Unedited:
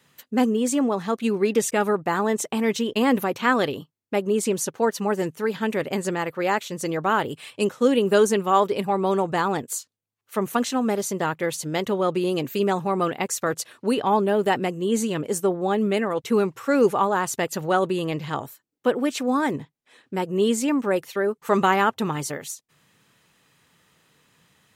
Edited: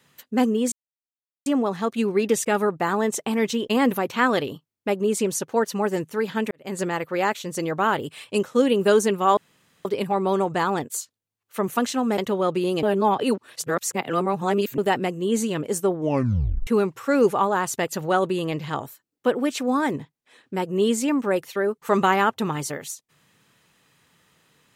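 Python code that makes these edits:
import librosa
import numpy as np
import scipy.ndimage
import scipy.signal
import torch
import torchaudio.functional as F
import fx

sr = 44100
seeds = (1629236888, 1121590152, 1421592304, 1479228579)

y = fx.edit(x, sr, fx.insert_silence(at_s=0.72, length_s=0.74),
    fx.fade_in_span(start_s=5.77, length_s=0.26, curve='qua'),
    fx.insert_room_tone(at_s=8.63, length_s=0.48),
    fx.cut(start_s=10.96, length_s=0.82),
    fx.reverse_span(start_s=12.43, length_s=1.95),
    fx.tape_stop(start_s=15.53, length_s=0.74), tone=tone)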